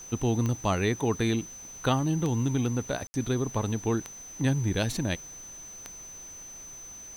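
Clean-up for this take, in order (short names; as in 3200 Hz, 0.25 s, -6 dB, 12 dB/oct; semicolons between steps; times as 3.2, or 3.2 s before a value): de-click; notch 6100 Hz, Q 30; room tone fill 3.07–3.14; noise print and reduce 30 dB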